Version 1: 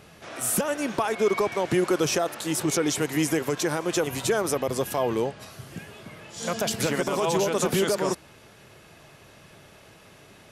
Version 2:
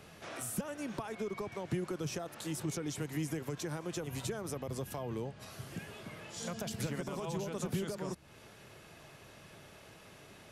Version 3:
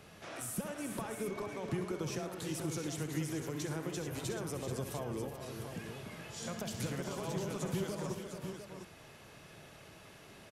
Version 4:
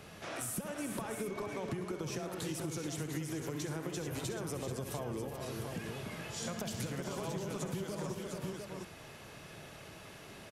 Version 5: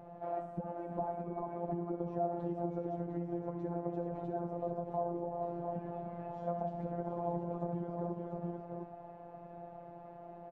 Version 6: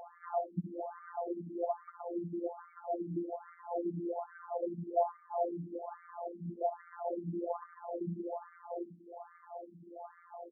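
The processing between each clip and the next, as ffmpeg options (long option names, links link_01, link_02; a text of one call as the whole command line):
ffmpeg -i in.wav -filter_complex "[0:a]acrossover=split=190[link_01][link_02];[link_02]acompressor=threshold=-37dB:ratio=4[link_03];[link_01][link_03]amix=inputs=2:normalize=0,volume=-4dB" out.wav
ffmpeg -i in.wav -af "aecho=1:1:65|110|373|433|700:0.299|0.188|0.251|0.376|0.376,volume=-1.5dB" out.wav
ffmpeg -i in.wav -af "acompressor=threshold=-39dB:ratio=6,volume=4dB" out.wav
ffmpeg -i in.wav -af "afftfilt=real='hypot(re,im)*cos(PI*b)':imag='0':win_size=1024:overlap=0.75,lowpass=frequency=730:width_type=q:width=4.1,volume=1dB" out.wav
ffmpeg -i in.wav -af "crystalizer=i=5.5:c=0,afftfilt=real='re*between(b*sr/1024,230*pow(1600/230,0.5+0.5*sin(2*PI*1.2*pts/sr))/1.41,230*pow(1600/230,0.5+0.5*sin(2*PI*1.2*pts/sr))*1.41)':imag='im*between(b*sr/1024,230*pow(1600/230,0.5+0.5*sin(2*PI*1.2*pts/sr))/1.41,230*pow(1600/230,0.5+0.5*sin(2*PI*1.2*pts/sr))*1.41)':win_size=1024:overlap=0.75,volume=6dB" out.wav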